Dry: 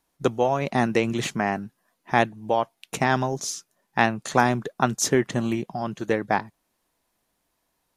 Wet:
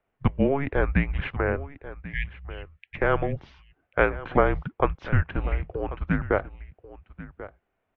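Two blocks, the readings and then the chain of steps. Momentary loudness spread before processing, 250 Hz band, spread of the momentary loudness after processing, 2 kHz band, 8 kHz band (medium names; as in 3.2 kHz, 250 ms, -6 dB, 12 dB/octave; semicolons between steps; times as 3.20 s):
9 LU, -3.5 dB, 18 LU, -2.0 dB, under -40 dB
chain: spectral selection erased 2.00–2.96 s, 240–1900 Hz; delay 1089 ms -16 dB; mistuned SSB -280 Hz 170–2900 Hz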